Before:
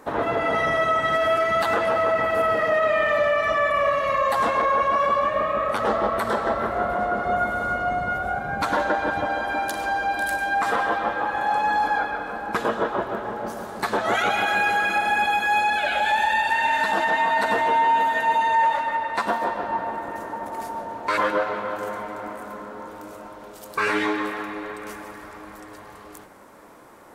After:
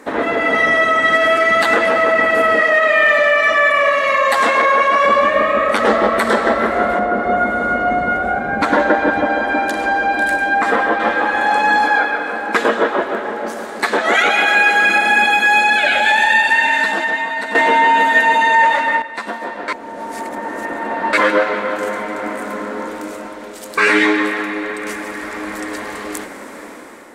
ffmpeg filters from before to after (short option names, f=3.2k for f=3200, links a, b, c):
-filter_complex "[0:a]asettb=1/sr,asplit=3[a][b][c];[a]atrim=end=2.624[d];[b]atrim=start=2.62:end=5.05,asetpts=PTS-STARTPTS,afade=t=in:d=0.004:c=qsin,afade=t=out:st=2.426:d=0.004:c=qsin,lowshelf=f=330:g=-10[e];[c]atrim=start=5.046[f];[d][e]acrossfade=d=0.004:c1=hsin:c2=qsin[g];[g][f]acrossfade=d=0.004:c1=qsin:c2=hsin,asettb=1/sr,asplit=3[h][i][j];[h]atrim=end=6.994[k];[i]atrim=start=6.99:end=11,asetpts=PTS-STARTPTS,afade=t=in:d=0.004:c=qsin,afade=t=out:st=4.006:d=0.004:c=qsin,highshelf=f=2.4k:g=-11.5[l];[j]atrim=start=10.996[m];[k][l]acrossfade=d=0.004:c1=hsin:c2=qsin[n];[n][m]acrossfade=d=0.004:c1=qsin:c2=hsin,asettb=1/sr,asplit=3[o][p][q];[o]atrim=end=11.864[r];[p]atrim=start=11.86:end=14.76,asetpts=PTS-STARTPTS,afade=t=in:d=0.004:c=qsin,afade=t=out:st=2.896:d=0.004:c=qsin,bass=f=250:g=-8,treble=f=4k:g=-2[s];[q]atrim=start=14.756[t];[r][s]acrossfade=d=0.004:c1=hsin:c2=qsin[u];[u][t]acrossfade=d=0.004:c1=qsin:c2=hsin,asplit=5[v][w][x][y][z];[v]atrim=end=17.552[aa];[w]atrim=start=17.548:end=19.022,asetpts=PTS-STARTPTS,volume=11.5dB[ab];[x]atrim=start=19.018:end=19.682[ac];[y]atrim=start=19.678:end=21.132,asetpts=PTS-STARTPTS,areverse[ad];[z]atrim=start=21.128[ae];[aa][ab]acrossfade=d=0.004:c1=hsin:c2=hsin[af];[af][ac]acrossfade=d=0.004:c1=hsin:c2=hsin[ag];[ag][ad]acrossfade=d=0.004:c1=hsin:c2=hsin[ah];[ah][ae]acrossfade=d=0.004:c1=hsin:c2=hsin,equalizer=f=125:t=o:w=1:g=-7,equalizer=f=250:t=o:w=1:g=11,equalizer=f=500:t=o:w=1:g=5,equalizer=f=2k:t=o:w=1:g=11,equalizer=f=4k:t=o:w=1:g=5,equalizer=f=8k:t=o:w=1:g=9,dynaudnorm=f=380:g=5:m=11.5dB,volume=-1dB"